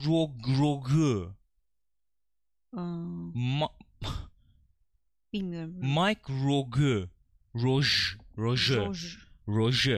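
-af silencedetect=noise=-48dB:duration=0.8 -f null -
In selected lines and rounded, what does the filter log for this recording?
silence_start: 1.34
silence_end: 2.73 | silence_duration: 1.40
silence_start: 4.28
silence_end: 5.33 | silence_duration: 1.05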